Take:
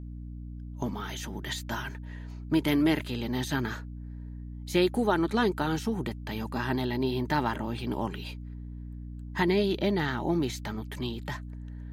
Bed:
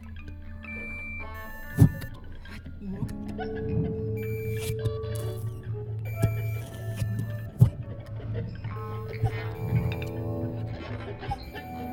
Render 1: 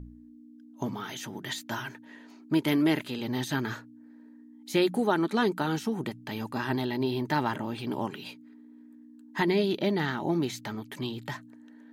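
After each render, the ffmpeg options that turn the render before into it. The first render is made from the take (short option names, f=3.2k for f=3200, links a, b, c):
-af "bandreject=f=60:t=h:w=4,bandreject=f=120:t=h:w=4,bandreject=f=180:t=h:w=4"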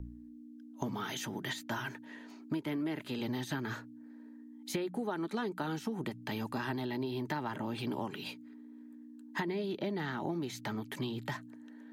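-filter_complex "[0:a]acrossover=split=330|510|2400[a][b][c][d];[d]alimiter=level_in=7dB:limit=-24dB:level=0:latency=1:release=469,volume=-7dB[e];[a][b][c][e]amix=inputs=4:normalize=0,acompressor=threshold=-32dB:ratio=12"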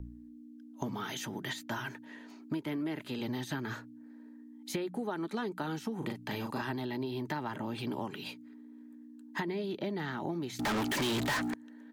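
-filter_complex "[0:a]asplit=3[a][b][c];[a]afade=t=out:st=6:d=0.02[d];[b]asplit=2[e][f];[f]adelay=39,volume=-4dB[g];[e][g]amix=inputs=2:normalize=0,afade=t=in:st=6:d=0.02,afade=t=out:st=6.61:d=0.02[h];[c]afade=t=in:st=6.61:d=0.02[i];[d][h][i]amix=inputs=3:normalize=0,asettb=1/sr,asplit=3[j][k][l];[j]atrim=end=10.594[m];[k]atrim=start=10.59:end=11.54,asetpts=PTS-STARTPTS,afade=t=in:d=0.004:c=qsin,afade=t=out:st=0.946:d=0.004:c=qsin,asplit=2[n][o];[o]highpass=f=720:p=1,volume=38dB,asoftclip=type=tanh:threshold=-25dB[p];[n][p]amix=inputs=2:normalize=0,lowpass=f=6.9k:p=1,volume=-6dB[q];[l]atrim=start=11.536[r];[m][q]acrossfade=d=0.004:c1=hsin:c2=qsin[s];[s][r]acrossfade=d=0.004:c1=qsin:c2=hsin"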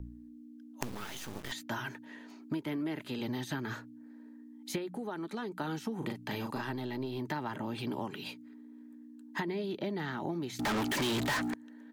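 -filter_complex "[0:a]asettb=1/sr,asplit=3[a][b][c];[a]atrim=end=0.814[d];[b]atrim=start=0.81:end=1.52,asetpts=PTS-STARTPTS,afade=t=in:d=0.004:c=qsin,afade=t=out:st=0.706:d=0.004:c=qsin,acrusher=bits=5:dc=4:mix=0:aa=0.000001[e];[c]atrim=start=1.516[f];[d][e]acrossfade=d=0.004:c1=hsin:c2=qsin[g];[g][f]acrossfade=d=0.004:c1=qsin:c2=hsin,asettb=1/sr,asplit=3[h][i][j];[h]atrim=end=4.784[k];[i]atrim=start=4.78:end=5.59,asetpts=PTS-STARTPTS,afade=t=in:d=0.004:c=qsin,afade=t=out:st=0.806:d=0.004:c=qsin,acompressor=threshold=-39dB:ratio=1.5:attack=3.2:release=140:knee=1:detection=peak[l];[j]atrim=start=5.586[m];[k][l]acrossfade=d=0.004:c1=hsin:c2=qsin[n];[n][m]acrossfade=d=0.004:c1=qsin:c2=hsin,asettb=1/sr,asplit=3[o][p][q];[o]atrim=end=6.554[r];[p]atrim=start=6.55:end=7.19,asetpts=PTS-STARTPTS,afade=t=in:d=0.004:c=qsin,afade=t=out:st=0.636:d=0.004:c=qsin,aeval=exprs='if(lt(val(0),0),0.708*val(0),val(0))':c=same[s];[q]atrim=start=7.186[t];[r][s]acrossfade=d=0.004:c1=hsin:c2=qsin[u];[u][t]acrossfade=d=0.004:c1=qsin:c2=hsin"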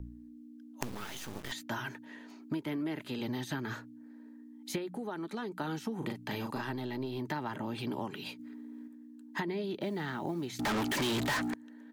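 -filter_complex "[0:a]asettb=1/sr,asplit=3[a][b][c];[a]atrim=end=8.394[d];[b]atrim=start=8.39:end=8.88,asetpts=PTS-STARTPTS,afade=t=in:d=0.004:c=qsin,afade=t=out:st=0.486:d=0.004:c=qsin,acontrast=31[e];[c]atrim=start=8.876[f];[d][e]acrossfade=d=0.004:c1=hsin:c2=qsin[g];[g][f]acrossfade=d=0.004:c1=qsin:c2=hsin,asettb=1/sr,asplit=3[h][i][j];[h]atrim=end=9.814[k];[i]atrim=start=9.81:end=10.54,asetpts=PTS-STARTPTS,afade=t=in:d=0.004:c=qsin,afade=t=out:st=0.726:d=0.004:c=qsin,acrusher=bits=8:mode=log:mix=0:aa=0.000001[l];[j]atrim=start=10.536[m];[k][l]acrossfade=d=0.004:c1=hsin:c2=qsin[n];[n][m]acrossfade=d=0.004:c1=qsin:c2=hsin"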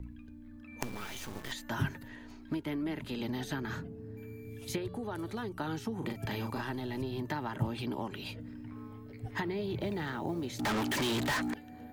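-filter_complex "[1:a]volume=-15.5dB[a];[0:a][a]amix=inputs=2:normalize=0"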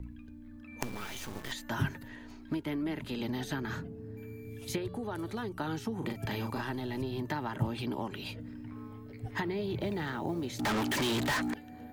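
-af "volume=1dB"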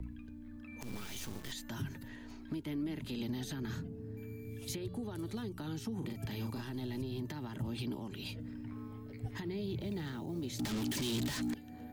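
-filter_complex "[0:a]alimiter=level_in=4dB:limit=-24dB:level=0:latency=1:release=75,volume=-4dB,acrossover=split=350|3000[a][b][c];[b]acompressor=threshold=-55dB:ratio=2.5[d];[a][d][c]amix=inputs=3:normalize=0"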